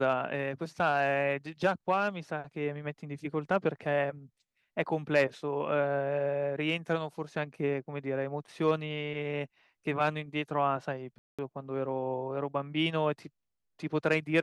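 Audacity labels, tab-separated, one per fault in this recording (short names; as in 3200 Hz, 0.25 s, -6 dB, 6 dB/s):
11.180000	11.390000	gap 0.206 s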